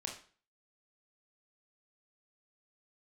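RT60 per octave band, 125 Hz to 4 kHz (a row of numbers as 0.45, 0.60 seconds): 0.45, 0.45, 0.40, 0.40, 0.40, 0.40 seconds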